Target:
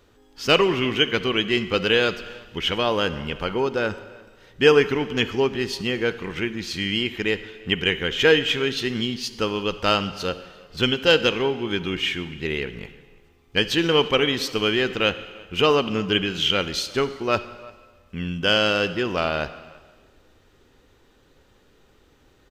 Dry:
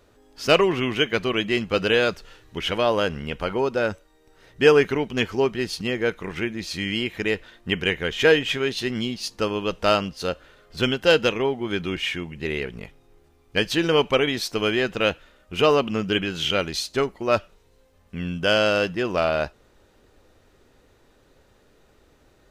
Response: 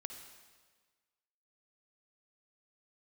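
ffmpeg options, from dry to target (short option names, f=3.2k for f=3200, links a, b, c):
-filter_complex "[0:a]equalizer=f=630:t=o:w=0.33:g=-6,equalizer=f=3.15k:t=o:w=0.33:g=4,equalizer=f=10k:t=o:w=0.33:g=-6,asplit=2[a][b];[b]adelay=344,volume=-24dB,highshelf=f=4k:g=-7.74[c];[a][c]amix=inputs=2:normalize=0,asplit=2[d][e];[1:a]atrim=start_sample=2205[f];[e][f]afir=irnorm=-1:irlink=0,volume=-0.5dB[g];[d][g]amix=inputs=2:normalize=0,volume=-3.5dB"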